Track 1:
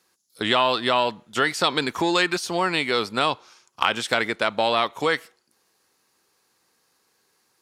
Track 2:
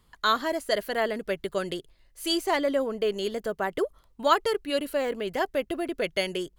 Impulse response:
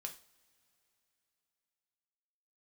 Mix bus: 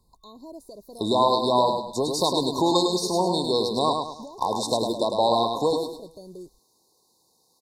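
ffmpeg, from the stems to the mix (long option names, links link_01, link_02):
-filter_complex "[0:a]adelay=600,volume=1dB,asplit=2[link_01][link_02];[link_02]volume=-5dB[link_03];[1:a]acrossover=split=400[link_04][link_05];[link_05]acompressor=threshold=-41dB:ratio=2[link_06];[link_04][link_06]amix=inputs=2:normalize=0,alimiter=level_in=7dB:limit=-24dB:level=0:latency=1:release=265,volume=-7dB,volume=-1dB[link_07];[link_03]aecho=0:1:104|208|312|416|520:1|0.36|0.13|0.0467|0.0168[link_08];[link_01][link_07][link_08]amix=inputs=3:normalize=0,afftfilt=real='re*(1-between(b*sr/4096,1100,3600))':imag='im*(1-between(b*sr/4096,1100,3600))':win_size=4096:overlap=0.75"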